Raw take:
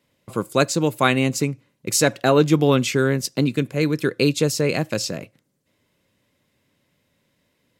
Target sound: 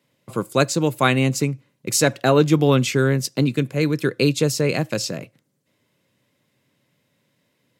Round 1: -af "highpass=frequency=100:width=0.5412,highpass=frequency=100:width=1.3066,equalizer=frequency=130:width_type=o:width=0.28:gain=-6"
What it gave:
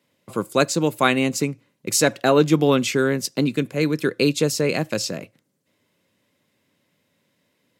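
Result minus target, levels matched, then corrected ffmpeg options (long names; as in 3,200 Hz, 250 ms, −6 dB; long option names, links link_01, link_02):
125 Hz band −4.5 dB
-af "highpass=frequency=100:width=0.5412,highpass=frequency=100:width=1.3066,equalizer=frequency=130:width_type=o:width=0.28:gain=4.5"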